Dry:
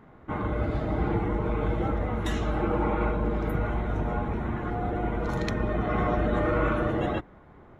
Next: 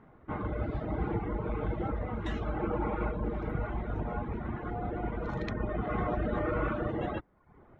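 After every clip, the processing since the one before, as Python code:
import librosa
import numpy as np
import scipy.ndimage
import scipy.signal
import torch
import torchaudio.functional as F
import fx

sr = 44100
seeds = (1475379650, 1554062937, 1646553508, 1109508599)

y = scipy.signal.sosfilt(scipy.signal.bessel(2, 2900.0, 'lowpass', norm='mag', fs=sr, output='sos'), x)
y = fx.dereverb_blind(y, sr, rt60_s=0.66)
y = y * 10.0 ** (-4.0 / 20.0)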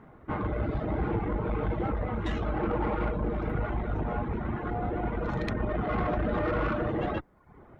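y = fx.tube_stage(x, sr, drive_db=28.0, bias=0.35)
y = y * 10.0 ** (6.0 / 20.0)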